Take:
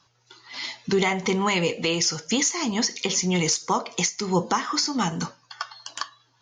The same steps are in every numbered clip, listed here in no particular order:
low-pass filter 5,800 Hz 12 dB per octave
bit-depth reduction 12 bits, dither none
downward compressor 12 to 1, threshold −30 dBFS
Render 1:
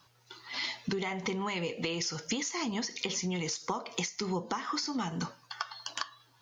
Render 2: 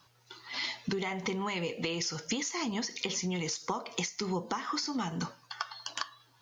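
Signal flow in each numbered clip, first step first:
low-pass filter, then bit-depth reduction, then downward compressor
low-pass filter, then downward compressor, then bit-depth reduction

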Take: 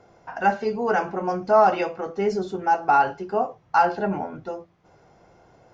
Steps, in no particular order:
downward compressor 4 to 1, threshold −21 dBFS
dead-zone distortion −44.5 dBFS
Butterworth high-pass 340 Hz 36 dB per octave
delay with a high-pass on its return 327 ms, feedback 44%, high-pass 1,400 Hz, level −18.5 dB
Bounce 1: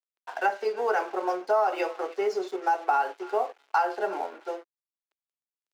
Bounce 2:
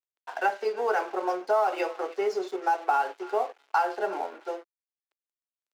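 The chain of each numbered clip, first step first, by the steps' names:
delay with a high-pass on its return, then dead-zone distortion, then downward compressor, then Butterworth high-pass
delay with a high-pass on its return, then downward compressor, then dead-zone distortion, then Butterworth high-pass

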